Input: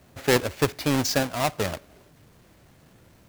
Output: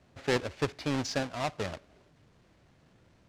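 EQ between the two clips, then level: LPF 5900 Hz 12 dB/oct; -7.5 dB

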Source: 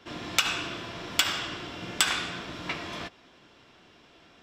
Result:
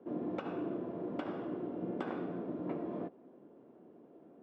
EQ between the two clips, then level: Butterworth band-pass 330 Hz, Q 0.87; +4.0 dB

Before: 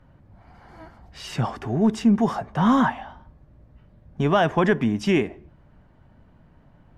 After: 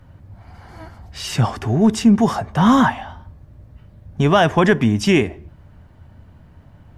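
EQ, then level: bell 88 Hz +11 dB 0.69 oct; high shelf 3900 Hz +9 dB; +4.5 dB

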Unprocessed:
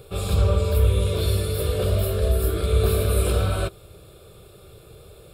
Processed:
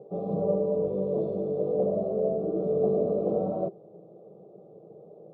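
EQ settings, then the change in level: elliptic band-pass 170–770 Hz, stop band 40 dB; air absorption 86 m; notch 380 Hz, Q 12; +2.5 dB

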